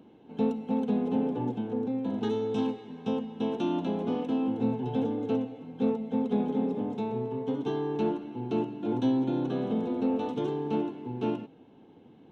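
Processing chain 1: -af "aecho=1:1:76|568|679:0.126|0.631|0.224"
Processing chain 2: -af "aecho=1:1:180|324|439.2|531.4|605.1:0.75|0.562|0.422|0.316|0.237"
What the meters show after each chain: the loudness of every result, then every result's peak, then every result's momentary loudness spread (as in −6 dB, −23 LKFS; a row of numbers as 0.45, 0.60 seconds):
−29.0, −27.0 LKFS; −13.5, −13.0 dBFS; 6, 6 LU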